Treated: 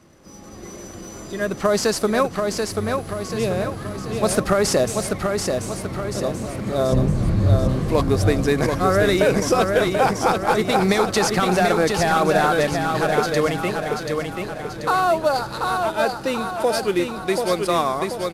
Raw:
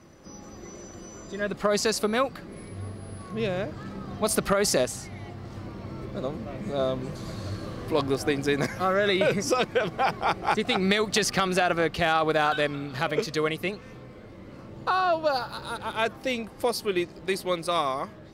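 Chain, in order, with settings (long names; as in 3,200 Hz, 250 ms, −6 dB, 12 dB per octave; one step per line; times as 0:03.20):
variable-slope delta modulation 64 kbit/s
dynamic equaliser 2,900 Hz, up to −5 dB, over −40 dBFS, Q 0.97
automatic gain control gain up to 6 dB
0:06.92–0:07.69: RIAA equalisation playback
0:15.90–0:16.72: notch comb filter 1,100 Hz
repeating echo 735 ms, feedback 49%, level −4.5 dB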